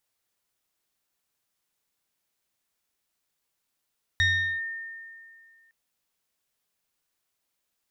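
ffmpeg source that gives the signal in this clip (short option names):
-f lavfi -i "aevalsrc='0.126*pow(10,-3*t/2.2)*sin(2*PI*1820*t+0.96*clip(1-t/0.41,0,1)*sin(2*PI*1.05*1820*t))':d=1.51:s=44100"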